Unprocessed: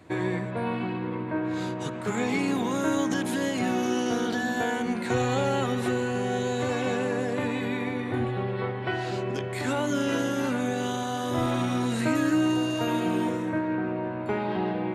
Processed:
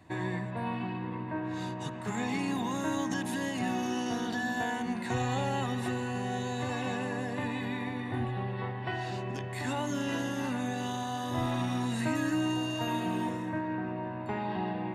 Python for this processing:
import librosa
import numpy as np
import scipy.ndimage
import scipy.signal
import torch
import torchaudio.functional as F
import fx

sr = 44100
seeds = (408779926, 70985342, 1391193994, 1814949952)

y = x + 0.47 * np.pad(x, (int(1.1 * sr / 1000.0), 0))[:len(x)]
y = y * 10.0 ** (-5.5 / 20.0)